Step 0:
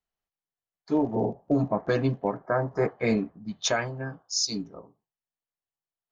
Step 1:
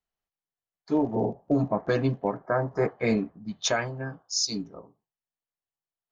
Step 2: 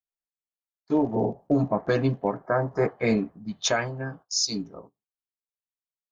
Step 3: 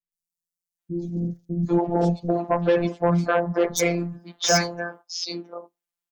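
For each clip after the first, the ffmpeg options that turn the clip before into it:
-af anull
-af "agate=range=-17dB:threshold=-48dB:ratio=16:detection=peak,volume=1.5dB"
-filter_complex "[0:a]afftfilt=real='hypot(re,im)*cos(PI*b)':imag='0':win_size=1024:overlap=0.75,aeval=exprs='0.335*sin(PI/2*2*val(0)/0.335)':c=same,acrossover=split=270|4500[a][b][c];[c]adelay=120[d];[b]adelay=790[e];[a][e][d]amix=inputs=3:normalize=0"

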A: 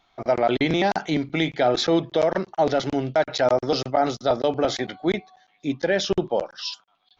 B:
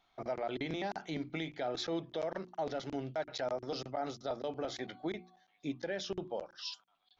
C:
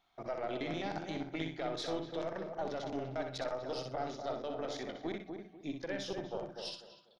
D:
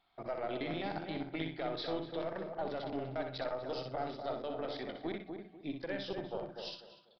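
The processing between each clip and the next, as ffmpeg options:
-af "bandreject=f=60:t=h:w=6,bandreject=f=120:t=h:w=6,bandreject=f=180:t=h:w=6,bandreject=f=240:t=h:w=6,bandreject=f=300:t=h:w=6,bandreject=f=360:t=h:w=6,alimiter=limit=-18.5dB:level=0:latency=1:release=478,volume=-9dB"
-filter_complex "[0:a]asplit=2[a][b];[b]adelay=246,lowpass=f=1k:p=1,volume=-4.5dB,asplit=2[c][d];[d]adelay=246,lowpass=f=1k:p=1,volume=0.3,asplit=2[e][f];[f]adelay=246,lowpass=f=1k:p=1,volume=0.3,asplit=2[g][h];[h]adelay=246,lowpass=f=1k:p=1,volume=0.3[i];[c][e][g][i]amix=inputs=4:normalize=0[j];[a][j]amix=inputs=2:normalize=0,aeval=exprs='0.0631*(cos(1*acos(clip(val(0)/0.0631,-1,1)))-cos(1*PI/2))+0.0141*(cos(2*acos(clip(val(0)/0.0631,-1,1)))-cos(2*PI/2))':c=same,asplit=2[k][l];[l]aecho=0:1:62|124|186:0.473|0.109|0.025[m];[k][m]amix=inputs=2:normalize=0,volume=-2.5dB"
-af "aresample=11025,aresample=44100"

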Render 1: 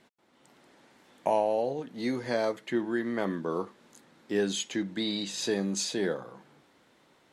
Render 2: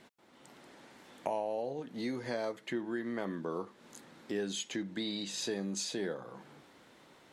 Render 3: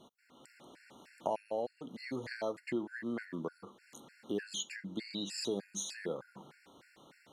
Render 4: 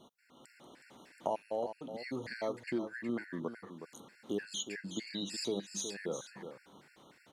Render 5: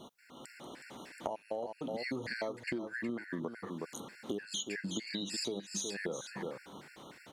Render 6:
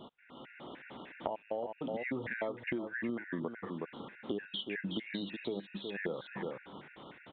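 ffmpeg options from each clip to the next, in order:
-af "acompressor=threshold=-45dB:ratio=2,volume=3.5dB"
-af "afftfilt=real='re*gt(sin(2*PI*3.3*pts/sr)*(1-2*mod(floor(b*sr/1024/1400),2)),0)':imag='im*gt(sin(2*PI*3.3*pts/sr)*(1-2*mod(floor(b*sr/1024/1400),2)),0)':win_size=1024:overlap=0.75,volume=1dB"
-af "aecho=1:1:368:0.335"
-af "acompressor=threshold=-42dB:ratio=12,volume=8dB"
-af "aresample=8000,aresample=44100,volume=1dB"

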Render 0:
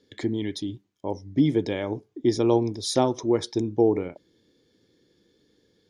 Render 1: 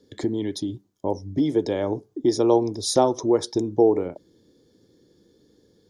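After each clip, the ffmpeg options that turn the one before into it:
-filter_complex "[0:a]equalizer=f=2.4k:t=o:w=1.4:g=-12.5,acrossover=split=360|4900[a][b][c];[a]acompressor=threshold=-35dB:ratio=6[d];[d][b][c]amix=inputs=3:normalize=0,volume=6.5dB"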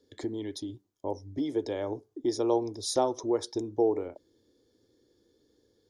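-af "equalizer=f=170:w=2.4:g=-14,volume=-7dB"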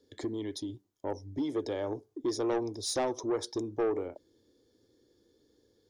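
-af "asoftclip=type=tanh:threshold=-24dB"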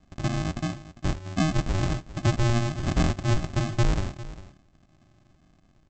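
-af "aresample=16000,acrusher=samples=34:mix=1:aa=0.000001,aresample=44100,aecho=1:1:401:0.158,volume=8.5dB"

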